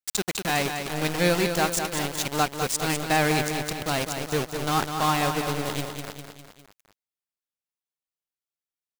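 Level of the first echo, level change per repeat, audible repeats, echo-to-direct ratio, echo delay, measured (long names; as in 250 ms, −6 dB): −7.0 dB, −5.0 dB, 4, −5.5 dB, 202 ms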